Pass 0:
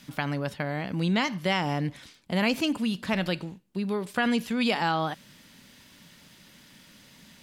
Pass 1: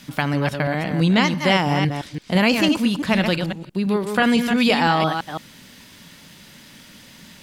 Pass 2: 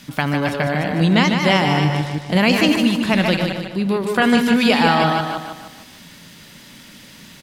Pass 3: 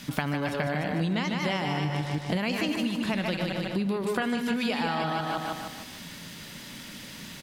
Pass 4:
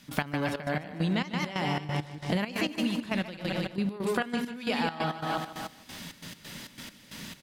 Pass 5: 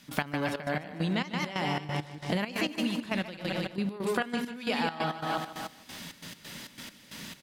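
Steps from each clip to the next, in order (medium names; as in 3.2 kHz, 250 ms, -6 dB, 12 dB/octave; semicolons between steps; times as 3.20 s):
chunks repeated in reverse 168 ms, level -6 dB; trim +7.5 dB
feedback delay 151 ms, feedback 44%, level -6 dB; trim +1.5 dB
compression 10:1, threshold -25 dBFS, peak gain reduction 15.5 dB
trance gate ".x.xx.x..xx" 135 bpm -12 dB
bass shelf 150 Hz -5 dB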